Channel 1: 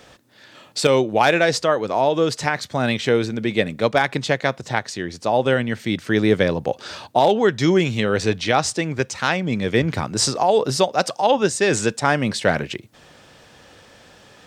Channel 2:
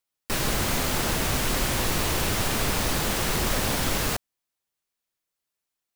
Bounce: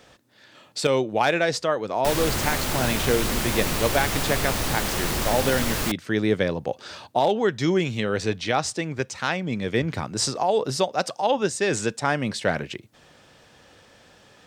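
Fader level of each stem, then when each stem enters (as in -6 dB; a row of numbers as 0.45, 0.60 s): -5.0, -0.5 dB; 0.00, 1.75 s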